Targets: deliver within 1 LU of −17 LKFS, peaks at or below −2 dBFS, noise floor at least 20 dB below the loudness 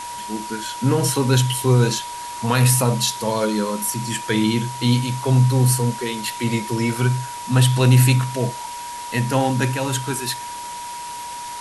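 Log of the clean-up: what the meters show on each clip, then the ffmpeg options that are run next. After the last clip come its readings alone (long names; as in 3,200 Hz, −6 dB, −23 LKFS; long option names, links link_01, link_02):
interfering tone 960 Hz; level of the tone −30 dBFS; background noise floor −32 dBFS; target noise floor −40 dBFS; integrated loudness −20.0 LKFS; sample peak −3.0 dBFS; target loudness −17.0 LKFS
→ -af "bandreject=frequency=960:width=30"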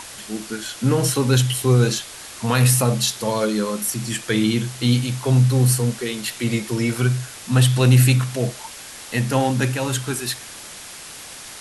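interfering tone none found; background noise floor −38 dBFS; target noise floor −40 dBFS
→ -af "afftdn=noise_reduction=6:noise_floor=-38"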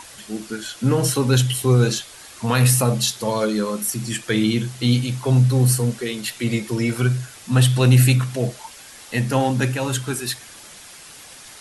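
background noise floor −42 dBFS; integrated loudness −20.0 LKFS; sample peak −3.0 dBFS; target loudness −17.0 LKFS
→ -af "volume=3dB,alimiter=limit=-2dB:level=0:latency=1"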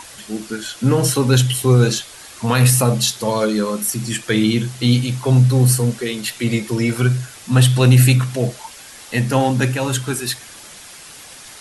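integrated loudness −17.0 LKFS; sample peak −2.0 dBFS; background noise floor −39 dBFS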